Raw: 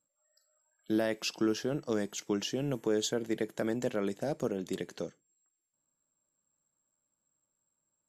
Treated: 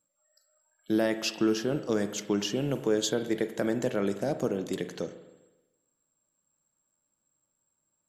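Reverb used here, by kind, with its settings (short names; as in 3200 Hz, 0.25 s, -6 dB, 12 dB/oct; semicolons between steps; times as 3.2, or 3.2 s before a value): spring tank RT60 1.1 s, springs 39/50 ms, chirp 30 ms, DRR 9.5 dB; gain +3.5 dB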